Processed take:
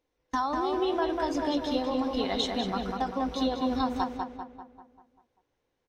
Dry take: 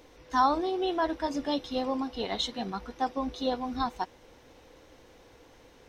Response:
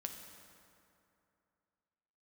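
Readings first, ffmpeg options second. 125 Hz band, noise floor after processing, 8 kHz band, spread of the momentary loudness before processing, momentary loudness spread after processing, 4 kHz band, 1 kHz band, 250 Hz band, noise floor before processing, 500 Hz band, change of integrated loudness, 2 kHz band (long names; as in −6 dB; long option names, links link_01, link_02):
+4.0 dB, −80 dBFS, +1.0 dB, 7 LU, 8 LU, +1.0 dB, −0.5 dB, +3.5 dB, −57 dBFS, +2.0 dB, +1.0 dB, 0.0 dB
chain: -filter_complex "[0:a]agate=range=-30dB:threshold=-44dB:ratio=16:detection=peak,acompressor=threshold=-32dB:ratio=5,asplit=2[link_01][link_02];[link_02]adelay=196,lowpass=frequency=2800:poles=1,volume=-3dB,asplit=2[link_03][link_04];[link_04]adelay=196,lowpass=frequency=2800:poles=1,volume=0.52,asplit=2[link_05][link_06];[link_06]adelay=196,lowpass=frequency=2800:poles=1,volume=0.52,asplit=2[link_07][link_08];[link_08]adelay=196,lowpass=frequency=2800:poles=1,volume=0.52,asplit=2[link_09][link_10];[link_10]adelay=196,lowpass=frequency=2800:poles=1,volume=0.52,asplit=2[link_11][link_12];[link_12]adelay=196,lowpass=frequency=2800:poles=1,volume=0.52,asplit=2[link_13][link_14];[link_14]adelay=196,lowpass=frequency=2800:poles=1,volume=0.52[link_15];[link_01][link_03][link_05][link_07][link_09][link_11][link_13][link_15]amix=inputs=8:normalize=0,volume=5dB"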